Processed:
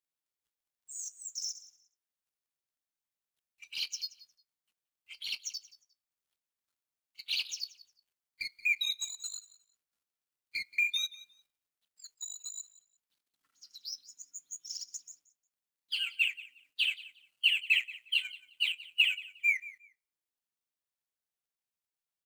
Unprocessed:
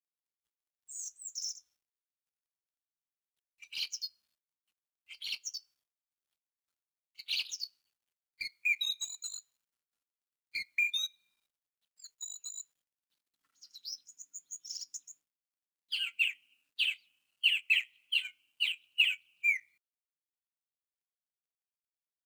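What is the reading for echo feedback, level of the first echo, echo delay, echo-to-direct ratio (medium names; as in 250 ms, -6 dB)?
20%, -18.5 dB, 178 ms, -18.5 dB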